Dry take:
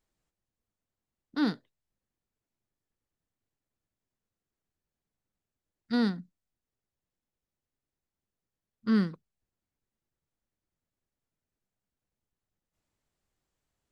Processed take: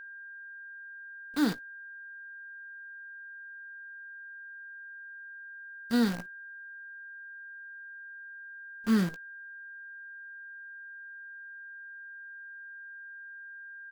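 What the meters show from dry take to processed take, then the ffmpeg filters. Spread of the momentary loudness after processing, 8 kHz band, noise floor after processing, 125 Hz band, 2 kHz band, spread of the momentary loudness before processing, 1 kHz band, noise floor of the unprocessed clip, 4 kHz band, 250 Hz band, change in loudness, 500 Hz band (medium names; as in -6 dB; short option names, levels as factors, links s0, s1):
15 LU, no reading, -46 dBFS, 0.0 dB, +11.5 dB, 13 LU, +0.5 dB, under -85 dBFS, +1.5 dB, +0.5 dB, -7.5 dB, +0.5 dB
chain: -filter_complex "[0:a]acrusher=bits=7:dc=4:mix=0:aa=0.000001,asplit=2[s0][s1];[s1]adelay=17,volume=0.224[s2];[s0][s2]amix=inputs=2:normalize=0,aeval=exprs='val(0)+0.00708*sin(2*PI*1600*n/s)':c=same"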